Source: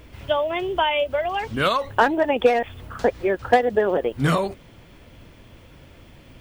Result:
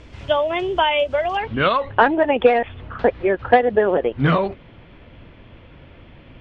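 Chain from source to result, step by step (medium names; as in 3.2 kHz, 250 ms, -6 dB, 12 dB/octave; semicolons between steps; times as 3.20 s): low-pass 7.4 kHz 24 dB/octave, from 1.37 s 3.3 kHz; trim +3 dB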